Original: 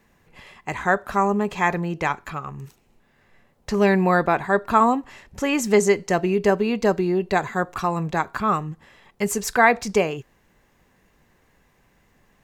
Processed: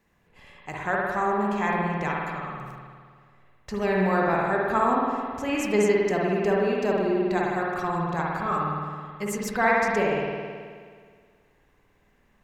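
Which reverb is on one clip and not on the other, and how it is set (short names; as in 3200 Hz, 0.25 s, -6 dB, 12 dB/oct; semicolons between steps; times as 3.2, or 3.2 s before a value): spring tank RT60 1.9 s, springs 53 ms, chirp 25 ms, DRR -3.5 dB; gain -8.5 dB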